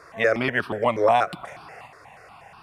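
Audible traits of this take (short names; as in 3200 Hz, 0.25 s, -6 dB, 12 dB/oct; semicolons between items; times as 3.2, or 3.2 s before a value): notches that jump at a steady rate 8.3 Hz 800–2000 Hz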